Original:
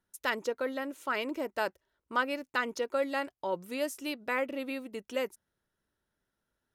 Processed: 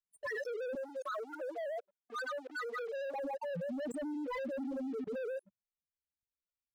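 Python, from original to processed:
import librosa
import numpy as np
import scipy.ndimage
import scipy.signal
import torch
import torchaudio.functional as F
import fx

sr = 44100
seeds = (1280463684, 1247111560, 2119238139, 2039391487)

y = fx.reverse_delay(x, sr, ms=112, wet_db=-3)
y = fx.spec_topn(y, sr, count=1)
y = fx.leveller(y, sr, passes=3)
y = fx.level_steps(y, sr, step_db=24)
y = fx.highpass(y, sr, hz=420.0, slope=24, at=(0.75, 3.14))
y = y * 10.0 ** (10.0 / 20.0)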